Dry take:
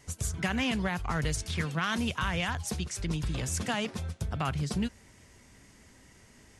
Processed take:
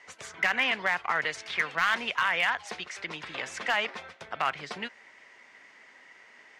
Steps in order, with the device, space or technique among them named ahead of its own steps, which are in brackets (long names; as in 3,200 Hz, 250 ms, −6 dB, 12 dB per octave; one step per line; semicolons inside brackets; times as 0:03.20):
megaphone (band-pass filter 680–3,000 Hz; parametric band 2,000 Hz +6 dB 0.41 octaves; hard clipping −22.5 dBFS, distortion −21 dB)
level +6.5 dB